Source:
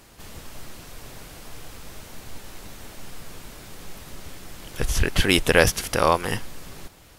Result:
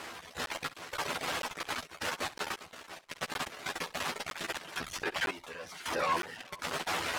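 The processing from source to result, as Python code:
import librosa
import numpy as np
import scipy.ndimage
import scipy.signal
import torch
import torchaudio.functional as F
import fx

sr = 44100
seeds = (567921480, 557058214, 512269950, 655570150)

p1 = np.sign(x) * np.sqrt(np.mean(np.square(x)))
p2 = p1 + fx.echo_single(p1, sr, ms=429, db=-16.5, dry=0)
p3 = fx.dereverb_blind(p2, sr, rt60_s=1.1)
p4 = fx.bandpass_q(p3, sr, hz=1300.0, q=0.58)
p5 = fx.room_early_taps(p4, sr, ms=(12, 67), db=(-4.5, -15.5))
p6 = fx.step_gate(p5, sr, bpm=82, pattern='..xx.xxxxx.xxx.', floor_db=-12.0, edge_ms=4.5)
y = fx.buffer_crackle(p6, sr, first_s=0.46, period_s=0.96, block=512, kind='zero')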